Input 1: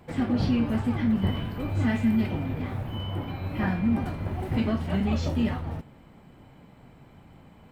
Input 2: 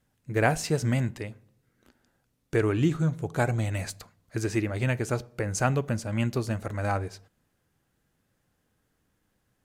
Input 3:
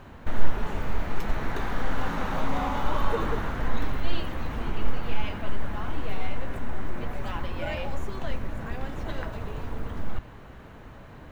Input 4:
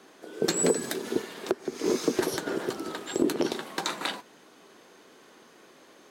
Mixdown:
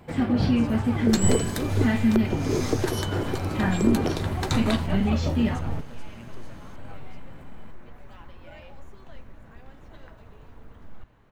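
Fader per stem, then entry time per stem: +2.5 dB, -20.0 dB, -14.0 dB, -0.5 dB; 0.00 s, 0.00 s, 0.85 s, 0.65 s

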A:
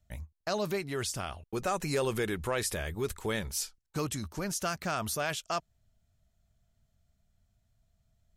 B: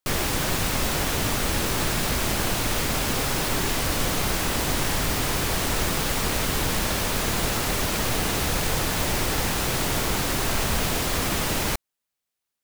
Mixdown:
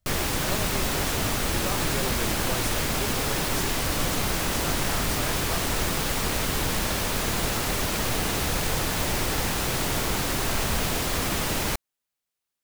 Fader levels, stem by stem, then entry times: -4.0 dB, -1.5 dB; 0.00 s, 0.00 s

